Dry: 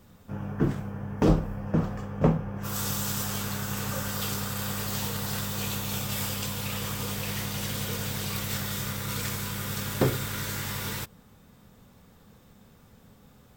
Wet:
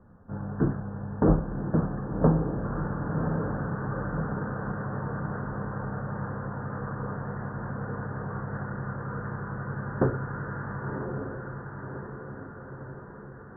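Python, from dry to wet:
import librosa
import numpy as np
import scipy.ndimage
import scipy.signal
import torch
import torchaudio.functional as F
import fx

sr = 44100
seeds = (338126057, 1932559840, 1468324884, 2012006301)

y = scipy.signal.sosfilt(scipy.signal.butter(16, 1700.0, 'lowpass', fs=sr, output='sos'), x)
y = fx.echo_diffused(y, sr, ms=1114, feedback_pct=57, wet_db=-5.5)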